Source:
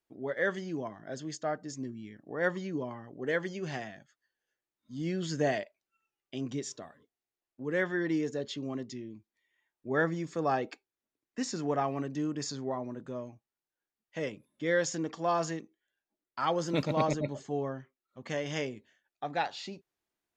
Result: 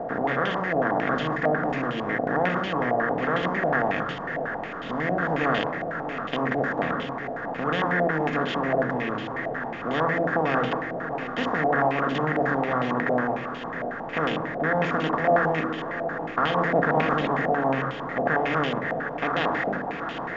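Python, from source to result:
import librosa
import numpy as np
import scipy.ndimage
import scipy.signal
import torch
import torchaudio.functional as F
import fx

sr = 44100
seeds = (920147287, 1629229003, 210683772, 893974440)

p1 = fx.bin_compress(x, sr, power=0.2)
p2 = fx.low_shelf(p1, sr, hz=180.0, db=7.5)
p3 = p2 + fx.echo_single(p2, sr, ms=653, db=-11.0, dry=0)
p4 = fx.room_shoebox(p3, sr, seeds[0], volume_m3=3300.0, walls='furnished', distance_m=1.7)
p5 = fx.filter_held_lowpass(p4, sr, hz=11.0, low_hz=690.0, high_hz=3000.0)
y = p5 * librosa.db_to_amplitude(-7.5)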